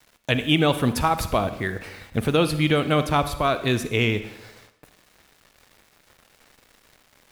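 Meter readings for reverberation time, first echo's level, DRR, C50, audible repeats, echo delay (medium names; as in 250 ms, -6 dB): 0.90 s, no echo, 11.0 dB, 12.0 dB, no echo, no echo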